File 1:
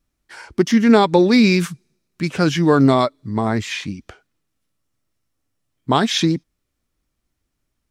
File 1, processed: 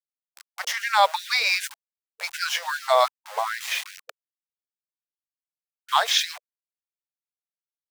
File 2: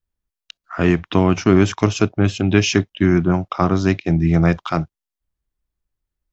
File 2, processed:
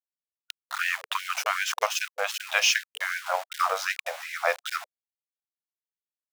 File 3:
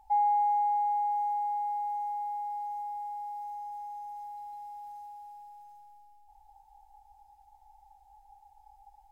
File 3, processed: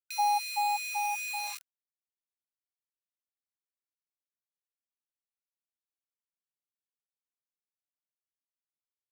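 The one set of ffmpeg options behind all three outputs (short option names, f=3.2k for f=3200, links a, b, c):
-af "aeval=exprs='val(0)*gte(abs(val(0)),0.0376)':c=same,afftfilt=real='re*gte(b*sr/1024,450*pow(1500/450,0.5+0.5*sin(2*PI*2.6*pts/sr)))':imag='im*gte(b*sr/1024,450*pow(1500/450,0.5+0.5*sin(2*PI*2.6*pts/sr)))':win_size=1024:overlap=0.75"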